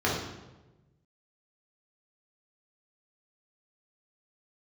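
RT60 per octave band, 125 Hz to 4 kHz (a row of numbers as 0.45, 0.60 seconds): 1.7, 1.3, 1.2, 1.0, 0.85, 0.80 seconds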